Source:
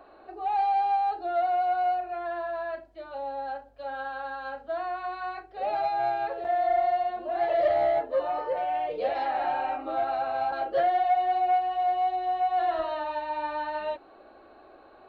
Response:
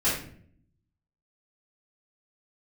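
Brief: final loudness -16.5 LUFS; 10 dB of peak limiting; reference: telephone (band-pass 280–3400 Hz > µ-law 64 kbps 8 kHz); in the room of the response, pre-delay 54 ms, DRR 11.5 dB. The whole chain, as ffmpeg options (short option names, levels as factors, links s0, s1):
-filter_complex "[0:a]alimiter=level_in=1.26:limit=0.0631:level=0:latency=1,volume=0.794,asplit=2[s0][s1];[1:a]atrim=start_sample=2205,adelay=54[s2];[s1][s2]afir=irnorm=-1:irlink=0,volume=0.0668[s3];[s0][s3]amix=inputs=2:normalize=0,highpass=280,lowpass=3400,volume=6.31" -ar 8000 -c:a pcm_mulaw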